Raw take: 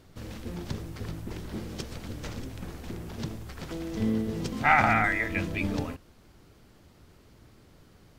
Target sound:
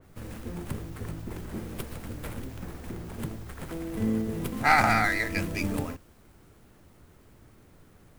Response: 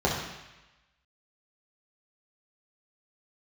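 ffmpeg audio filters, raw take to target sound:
-filter_complex "[0:a]highshelf=frequency=5000:gain=10,acrossover=split=280|1000|2600[link_01][link_02][link_03][link_04];[link_04]aeval=exprs='abs(val(0))':channel_layout=same[link_05];[link_01][link_02][link_03][link_05]amix=inputs=4:normalize=0,adynamicequalizer=threshold=0.00891:dfrequency=2700:dqfactor=0.7:tfrequency=2700:tqfactor=0.7:attack=5:release=100:ratio=0.375:range=2:mode=boostabove:tftype=highshelf"

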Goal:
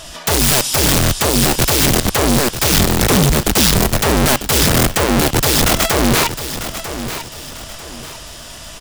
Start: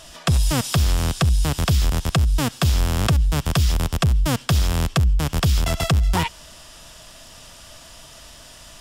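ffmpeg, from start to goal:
ffmpeg -i in.wav -filter_complex "[0:a]asettb=1/sr,asplit=3[link_01][link_02][link_03];[link_01]atrim=end=2.724[link_04];[link_02]atrim=start=2.72:end=3.77,asetpts=PTS-STARTPTS,afade=type=in:duration=0.004:curve=qsin,afade=type=out:start_time=1.046:duration=0.004:curve=qsin,acompressor=threshold=-19dB:ratio=4[link_05];[link_03]atrim=start=3.766[link_06];[link_04][link_05]acrossfade=duration=0.004:curve1=hsin:curve2=qsin[link_07];[link_07][link_06]acrossfade=duration=0.004:curve1=qsin:curve2=hsin,aeval=exprs='(mod(7.94*val(0)+1,2)-1)/7.94':channel_layout=same,aecho=1:1:946|1892|2838|3784:0.282|0.093|0.0307|0.0101,volume=9dB" out.wav

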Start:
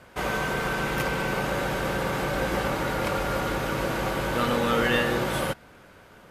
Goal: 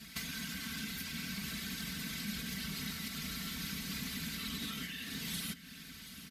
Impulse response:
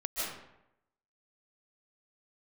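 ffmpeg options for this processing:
-filter_complex "[0:a]alimiter=limit=-18.5dB:level=0:latency=1:release=143,firequalizer=gain_entry='entry(180,0);entry(440,-25);entry(830,-11);entry(2000,11);entry(8600,-6)':delay=0.05:min_phase=1,acompressor=threshold=-36dB:ratio=12,equalizer=frequency=1600:width=0.41:gain=-13,aeval=exprs='0.0211*(cos(1*acos(clip(val(0)/0.0211,-1,1)))-cos(1*PI/2))+0.00168*(cos(2*acos(clip(val(0)/0.0211,-1,1)))-cos(2*PI/2))+0.000422*(cos(5*acos(clip(val(0)/0.0211,-1,1)))-cos(5*PI/2))':channel_layout=same,afftfilt=real='hypot(re,im)*cos(2*PI*random(0))':imag='hypot(re,im)*sin(2*PI*random(1))':win_size=512:overlap=0.75,highpass=74,asplit=2[link_01][link_02];[link_02]aecho=0:1:733:0.168[link_03];[link_01][link_03]amix=inputs=2:normalize=0,aexciter=amount=1.5:drive=9.4:freq=3800,bandreject=frequency=880:width=12,aecho=1:1:4.5:0.99,volume=7.5dB"

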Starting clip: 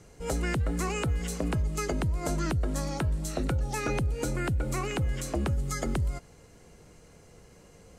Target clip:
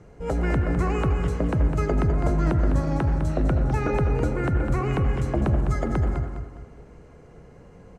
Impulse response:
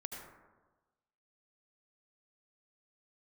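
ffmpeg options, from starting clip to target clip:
-filter_complex "[0:a]aemphasis=mode=reproduction:type=75kf,aecho=1:1:205|410|615|820:0.398|0.131|0.0434|0.0143,asplit=2[link_01][link_02];[1:a]atrim=start_sample=2205,lowpass=2500[link_03];[link_02][link_03]afir=irnorm=-1:irlink=0,volume=2.5dB[link_04];[link_01][link_04]amix=inputs=2:normalize=0"

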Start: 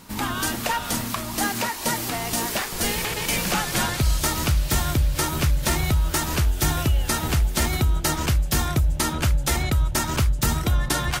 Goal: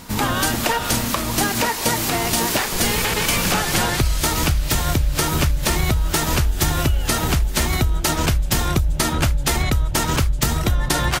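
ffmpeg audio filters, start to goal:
ffmpeg -i in.wav -filter_complex "[0:a]acompressor=threshold=-22dB:ratio=16,asplit=2[link_01][link_02];[link_02]asetrate=22050,aresample=44100,atempo=2,volume=-6dB[link_03];[link_01][link_03]amix=inputs=2:normalize=0,volume=6.5dB" out.wav

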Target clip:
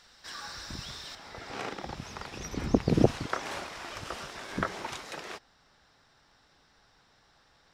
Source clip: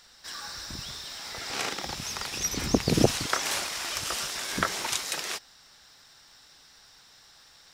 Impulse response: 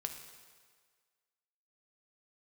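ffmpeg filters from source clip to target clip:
-af "asetnsamples=nb_out_samples=441:pad=0,asendcmd='1.15 lowpass f 1000',lowpass=frequency=3700:poles=1"

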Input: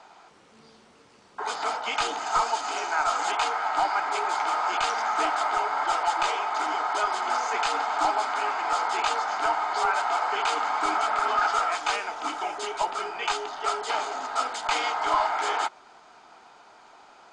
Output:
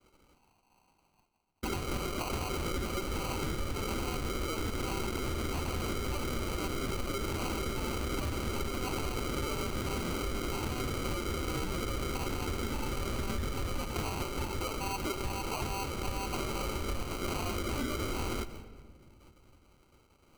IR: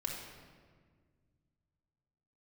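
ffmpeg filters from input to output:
-filter_complex "[0:a]areverse,acompressor=mode=upward:threshold=-46dB:ratio=2.5,areverse,asetrate=37485,aresample=44100,lowpass=frequency=2500:width_type=q:width=0.5098,lowpass=frequency=2500:width_type=q:width=0.6013,lowpass=frequency=2500:width_type=q:width=0.9,lowpass=frequency=2500:width_type=q:width=2.563,afreqshift=-2900,acrusher=samples=25:mix=1:aa=0.000001,equalizer=frequency=500:width_type=o:width=1.1:gain=-7,agate=range=-33dB:threshold=-43dB:ratio=3:detection=peak,alimiter=limit=-23.5dB:level=0:latency=1:release=76,asplit=2[link_01][link_02];[1:a]atrim=start_sample=2205[link_03];[link_02][link_03]afir=irnorm=-1:irlink=0,volume=-13dB[link_04];[link_01][link_04]amix=inputs=2:normalize=0,acompressor=threshold=-32dB:ratio=6,volume=1.5dB"

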